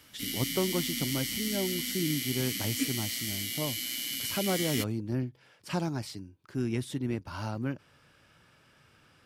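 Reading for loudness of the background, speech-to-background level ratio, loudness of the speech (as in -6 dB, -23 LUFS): -32.5 LUFS, -2.0 dB, -34.5 LUFS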